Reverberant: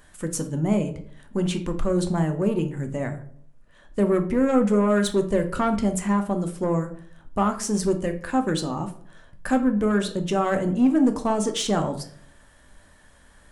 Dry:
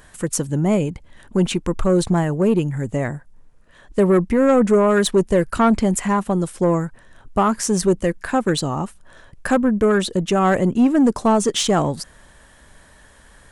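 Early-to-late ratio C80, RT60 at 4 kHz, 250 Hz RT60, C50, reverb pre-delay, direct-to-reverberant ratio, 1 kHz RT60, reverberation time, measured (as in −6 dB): 16.5 dB, 0.35 s, 0.70 s, 11.5 dB, 3 ms, 6.0 dB, 0.50 s, 0.55 s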